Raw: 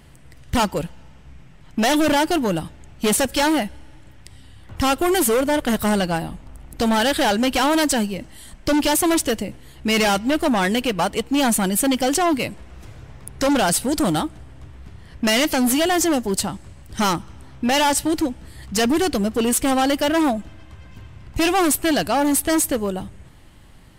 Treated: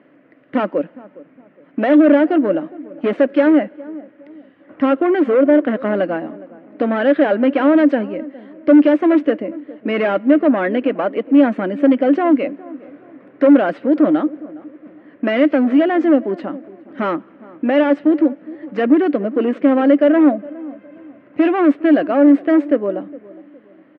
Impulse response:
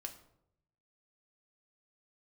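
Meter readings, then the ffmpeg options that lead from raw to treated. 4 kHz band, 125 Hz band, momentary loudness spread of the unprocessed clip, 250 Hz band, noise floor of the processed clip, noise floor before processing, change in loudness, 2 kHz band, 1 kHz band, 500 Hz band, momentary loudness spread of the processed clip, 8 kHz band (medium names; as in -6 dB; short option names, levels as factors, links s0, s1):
under -10 dB, no reading, 11 LU, +7.0 dB, -49 dBFS, -45 dBFS, +4.5 dB, -1.0 dB, -2.0 dB, +6.5 dB, 17 LU, under -40 dB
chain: -filter_complex "[0:a]highpass=f=230:w=0.5412,highpass=f=230:w=1.3066,equalizer=f=290:t=q:w=4:g=10,equalizer=f=570:t=q:w=4:g=9,equalizer=f=870:t=q:w=4:g=-9,lowpass=f=2100:w=0.5412,lowpass=f=2100:w=1.3066,asplit=2[s0][s1];[s1]adelay=412,lowpass=f=820:p=1,volume=0.119,asplit=2[s2][s3];[s3]adelay=412,lowpass=f=820:p=1,volume=0.4,asplit=2[s4][s5];[s5]adelay=412,lowpass=f=820:p=1,volume=0.4[s6];[s0][s2][s4][s6]amix=inputs=4:normalize=0,volume=1.12"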